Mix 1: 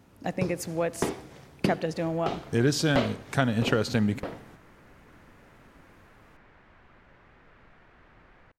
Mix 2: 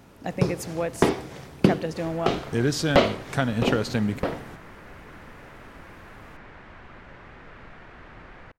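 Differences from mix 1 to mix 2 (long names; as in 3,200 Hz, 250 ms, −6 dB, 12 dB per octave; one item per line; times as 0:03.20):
first sound +8.5 dB
second sound +11.0 dB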